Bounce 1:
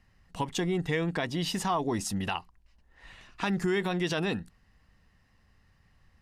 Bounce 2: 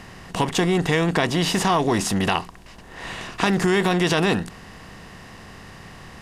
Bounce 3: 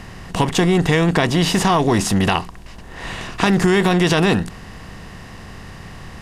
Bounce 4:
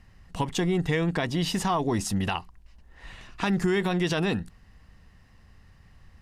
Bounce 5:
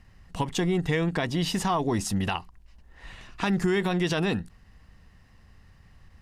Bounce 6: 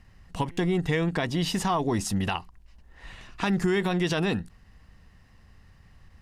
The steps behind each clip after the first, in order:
per-bin compression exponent 0.6; gain +6.5 dB
low shelf 130 Hz +7.5 dB; gain +3 dB
per-bin expansion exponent 1.5; gain -7.5 dB
ending taper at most 320 dB/s
stuck buffer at 0.51, samples 256, times 10

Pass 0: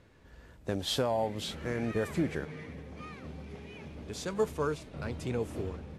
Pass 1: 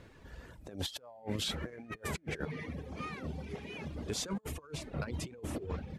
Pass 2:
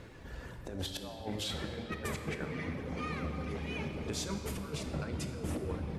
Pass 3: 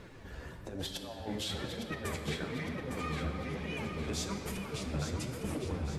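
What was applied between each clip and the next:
negative-ratio compressor -38 dBFS, ratio -0.5; reverb removal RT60 1 s; gain +1 dB
compressor, threshold -39 dBFS, peak gain reduction 9.5 dB; reverb RT60 4.0 s, pre-delay 14 ms, DRR 4 dB; gain +4.5 dB
flange 1.1 Hz, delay 4.3 ms, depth 10 ms, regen +37%; on a send: thinning echo 0.858 s, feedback 47%, level -7 dB; on the sum: gain +4 dB

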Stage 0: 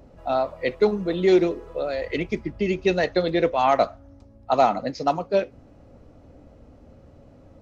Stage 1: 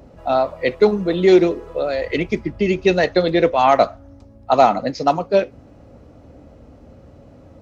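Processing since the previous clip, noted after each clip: HPF 41 Hz; gain +5.5 dB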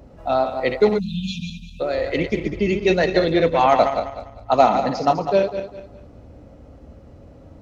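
regenerating reverse delay 0.1 s, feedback 54%, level -6.5 dB; low shelf 84 Hz +5.5 dB; spectral delete 0.99–1.81, 250–2400 Hz; gain -2.5 dB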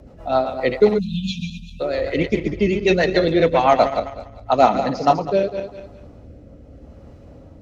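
rotary speaker horn 7.5 Hz, later 0.8 Hz, at 4.43; gain +3 dB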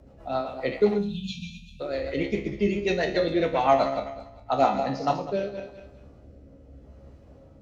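resonator 68 Hz, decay 0.4 s, harmonics all, mix 80%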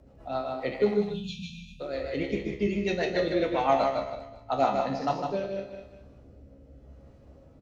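echo 0.154 s -5.5 dB; gain -3.5 dB

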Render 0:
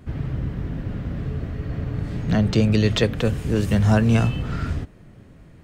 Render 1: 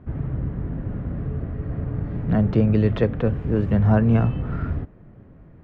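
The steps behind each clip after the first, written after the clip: LPF 1400 Hz 12 dB/oct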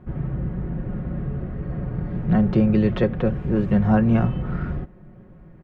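comb 5.5 ms, depth 55%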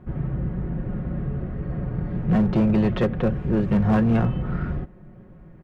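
hard clip -14.5 dBFS, distortion -15 dB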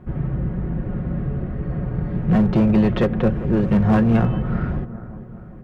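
analogue delay 0.396 s, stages 4096, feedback 51%, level -14.5 dB; gain +3 dB

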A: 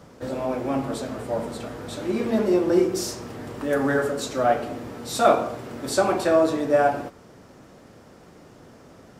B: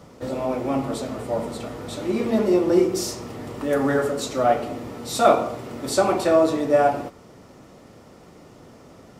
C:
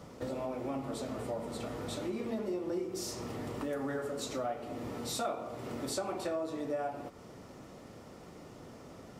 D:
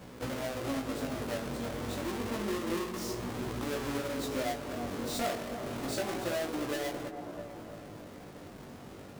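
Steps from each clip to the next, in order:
notch 1600 Hz, Q 7.9; gain +1.5 dB
compressor 4:1, threshold -32 dBFS, peak gain reduction 18 dB; gain -3.5 dB
half-waves squared off; dark delay 0.324 s, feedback 60%, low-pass 1200 Hz, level -7 dB; chorus 0.29 Hz, delay 16 ms, depth 5.3 ms

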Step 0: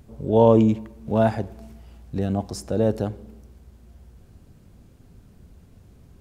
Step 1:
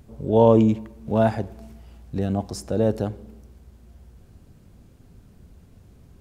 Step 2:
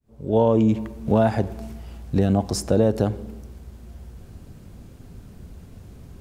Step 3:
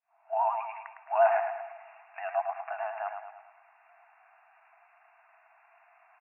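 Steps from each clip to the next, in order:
nothing audible
opening faded in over 0.80 s; compressor 6:1, threshold -21 dBFS, peak gain reduction 8 dB; gain +7.5 dB
vibrato 10 Hz 61 cents; brick-wall FIR band-pass 640–2800 Hz; on a send: feedback echo 0.107 s, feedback 47%, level -6.5 dB

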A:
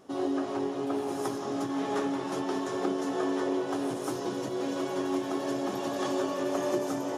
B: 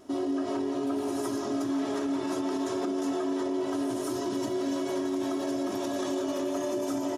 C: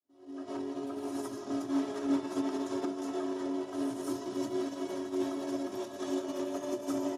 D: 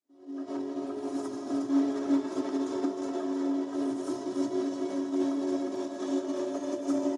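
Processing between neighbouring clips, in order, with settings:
tone controls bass +5 dB, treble +3 dB; comb 3.1 ms, depth 77%; limiter -22.5 dBFS, peak gain reduction 9 dB
opening faded in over 0.51 s; tape echo 0.598 s, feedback 48%, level -7 dB, low-pass 2300 Hz; upward expander 2.5:1, over -39 dBFS
speaker cabinet 120–9000 Hz, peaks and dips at 290 Hz +6 dB, 510 Hz +4 dB, 2800 Hz -4 dB; echo 0.309 s -7 dB

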